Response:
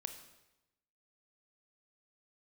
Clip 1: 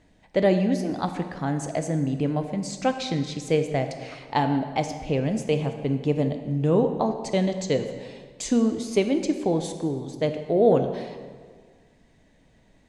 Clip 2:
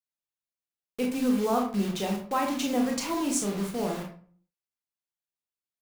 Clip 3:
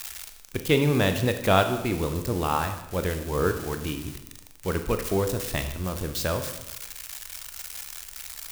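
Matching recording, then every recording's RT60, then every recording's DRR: 3; 1.7, 0.50, 0.95 s; 6.5, 1.0, 7.0 dB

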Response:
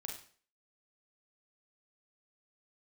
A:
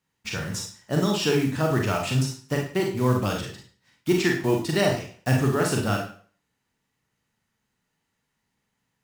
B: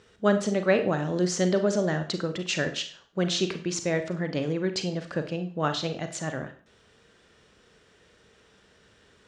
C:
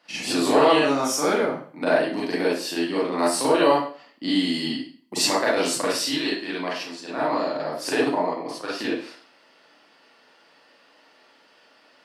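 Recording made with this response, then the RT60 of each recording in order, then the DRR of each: A; 0.45, 0.45, 0.45 s; 0.0, 7.5, -7.5 dB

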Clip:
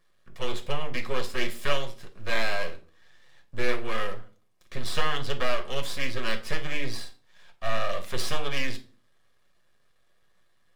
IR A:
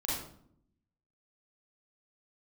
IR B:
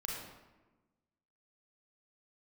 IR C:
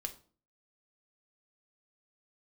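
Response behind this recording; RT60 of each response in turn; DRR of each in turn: C; 0.65, 1.2, 0.45 s; -6.5, -2.5, 5.0 dB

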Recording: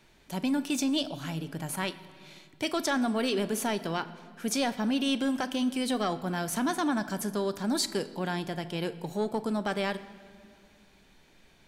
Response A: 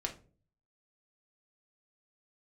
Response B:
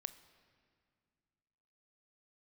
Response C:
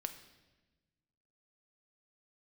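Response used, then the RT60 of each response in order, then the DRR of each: B; not exponential, 2.1 s, 1.2 s; 0.5, 12.5, 7.5 dB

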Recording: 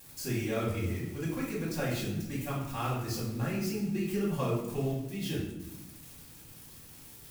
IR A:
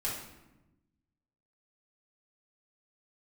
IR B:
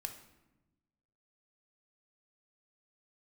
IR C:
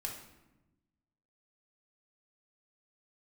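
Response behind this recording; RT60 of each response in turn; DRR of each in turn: A; 1.0, 1.0, 1.0 s; -7.5, 4.5, -1.0 dB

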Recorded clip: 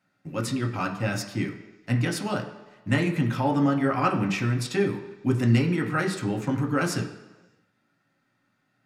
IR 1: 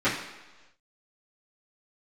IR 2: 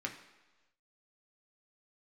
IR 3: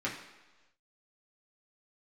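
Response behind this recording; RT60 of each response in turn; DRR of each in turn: 2; 1.2, 1.2, 1.2 s; -15.5, 1.0, -5.5 dB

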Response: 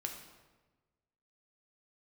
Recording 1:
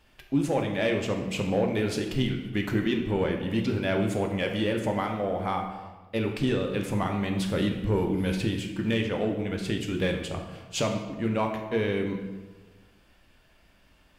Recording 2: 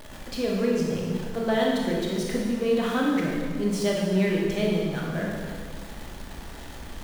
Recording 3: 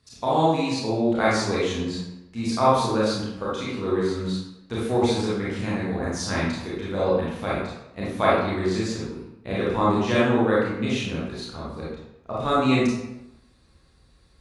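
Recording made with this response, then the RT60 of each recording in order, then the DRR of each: 1; 1.3, 1.8, 0.90 s; 2.0, -3.0, -8.0 dB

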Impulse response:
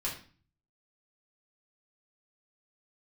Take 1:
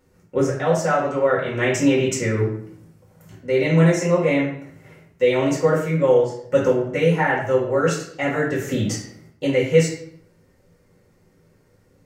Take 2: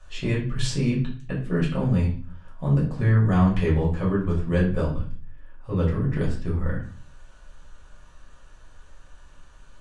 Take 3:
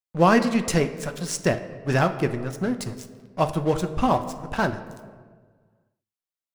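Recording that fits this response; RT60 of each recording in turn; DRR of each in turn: 2; 0.65, 0.40, 1.6 s; -7.0, -5.5, 7.5 dB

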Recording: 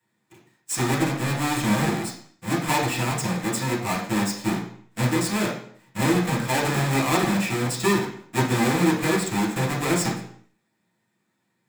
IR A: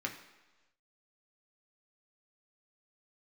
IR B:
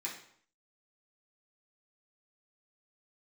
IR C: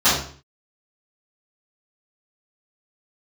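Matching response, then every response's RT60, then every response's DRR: B; 1.2, 0.60, 0.45 s; 1.0, -5.5, -16.0 dB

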